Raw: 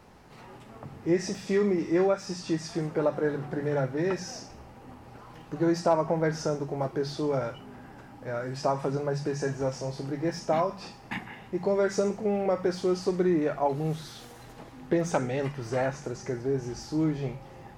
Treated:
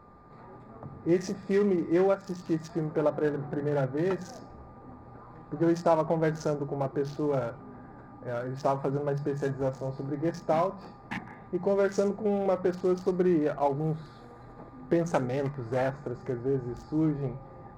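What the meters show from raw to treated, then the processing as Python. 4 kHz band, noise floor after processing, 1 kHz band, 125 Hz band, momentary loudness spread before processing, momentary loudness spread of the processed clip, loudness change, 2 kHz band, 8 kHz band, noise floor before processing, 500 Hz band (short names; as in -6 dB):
-8.0 dB, -50 dBFS, -0.5 dB, 0.0 dB, 20 LU, 21 LU, -0.5 dB, -3.0 dB, n/a, -49 dBFS, 0.0 dB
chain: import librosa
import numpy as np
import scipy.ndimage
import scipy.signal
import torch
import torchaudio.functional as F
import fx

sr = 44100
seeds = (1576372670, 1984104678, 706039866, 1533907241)

y = fx.wiener(x, sr, points=15)
y = y + 10.0 ** (-57.0 / 20.0) * np.sin(2.0 * np.pi * 1200.0 * np.arange(len(y)) / sr)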